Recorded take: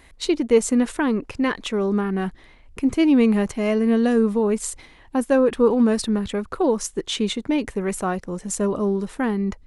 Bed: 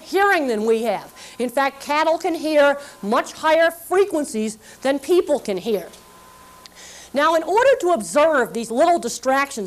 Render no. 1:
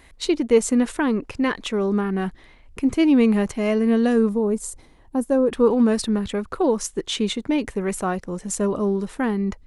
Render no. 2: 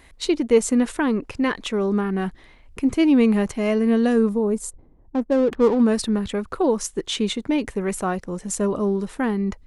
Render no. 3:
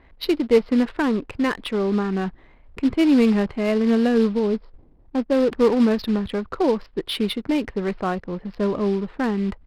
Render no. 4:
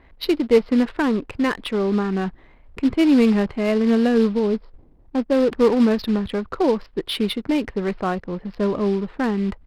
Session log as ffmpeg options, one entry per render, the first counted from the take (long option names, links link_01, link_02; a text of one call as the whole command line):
ffmpeg -i in.wav -filter_complex "[0:a]asettb=1/sr,asplit=3[link_01][link_02][link_03];[link_01]atrim=end=4.294[link_04];[link_02]atrim=start=4.29:end=5.52,asetpts=PTS-STARTPTS,afade=type=in:duration=0.004:curve=qsin,afade=type=out:start_time=1.226:duration=0.004:curve=qsin,equalizer=frequency=2500:width=0.57:gain=-13[link_05];[link_03]atrim=start=5.516[link_06];[link_04][link_05]acrossfade=duration=0.004:curve1=hsin:curve2=qsin[link_07];[link_07][link_06]acrossfade=duration=0.004:curve1=qsin:curve2=hsin" out.wav
ffmpeg -i in.wav -filter_complex "[0:a]asplit=3[link_01][link_02][link_03];[link_01]afade=type=out:start_time=4.69:duration=0.02[link_04];[link_02]adynamicsmooth=sensitivity=3.5:basefreq=500,afade=type=in:start_time=4.69:duration=0.02,afade=type=out:start_time=5.77:duration=0.02[link_05];[link_03]afade=type=in:start_time=5.77:duration=0.02[link_06];[link_04][link_05][link_06]amix=inputs=3:normalize=0" out.wav
ffmpeg -i in.wav -af "aresample=11025,acrusher=bits=5:mode=log:mix=0:aa=0.000001,aresample=44100,adynamicsmooth=sensitivity=5.5:basefreq=1800" out.wav
ffmpeg -i in.wav -af "volume=1dB" out.wav